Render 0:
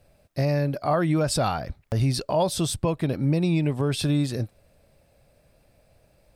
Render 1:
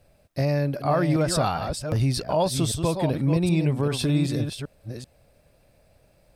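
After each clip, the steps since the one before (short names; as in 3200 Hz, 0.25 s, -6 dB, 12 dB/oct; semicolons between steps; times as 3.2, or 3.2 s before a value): reverse delay 0.388 s, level -7 dB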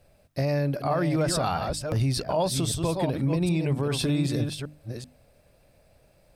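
notches 50/100/150/200/250/300 Hz; limiter -16.5 dBFS, peak gain reduction 6 dB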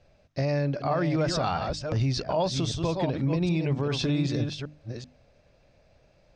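Chebyshev low-pass 6400 Hz, order 4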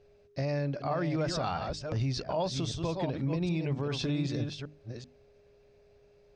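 whine 410 Hz -55 dBFS; gain -5 dB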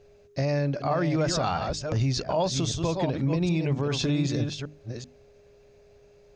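bell 6700 Hz +8.5 dB 0.26 oct; gain +5.5 dB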